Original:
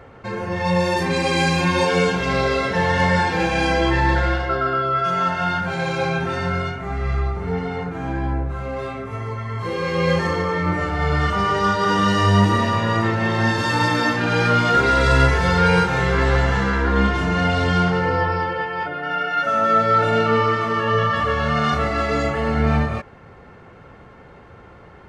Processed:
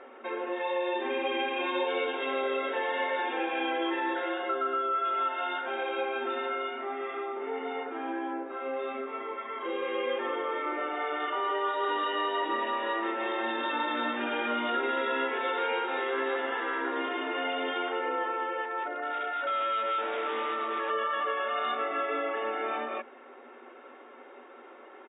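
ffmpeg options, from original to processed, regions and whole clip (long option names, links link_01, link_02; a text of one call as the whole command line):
ffmpeg -i in.wav -filter_complex "[0:a]asettb=1/sr,asplit=3[link_01][link_02][link_03];[link_01]atrim=end=18.654[link_04];[link_02]atrim=start=18.65:end=20.9,asetpts=PTS-STARTPTS,afade=type=in:duration=0.004:curve=qsin,afade=type=out:start_time=2.246:duration=0.004:curve=qsin,lowpass=frequency=2200:width=0.5412,lowpass=frequency=2200:width=1.3066,volume=20.5dB,asoftclip=hard,volume=-20.5dB[link_05];[link_03]atrim=start=20.896[link_06];[link_04][link_05]acrossfade=duration=0.004:curve1=hsin:curve2=qsin[link_07];[link_07][link_06]acrossfade=duration=0.004:curve1=qsin:curve2=hsin,aecho=1:1:5.3:0.4,afftfilt=real='re*between(b*sr/4096,230,3800)':imag='im*between(b*sr/4096,230,3800)':win_size=4096:overlap=0.75,acompressor=threshold=-28dB:ratio=2,volume=-4dB" out.wav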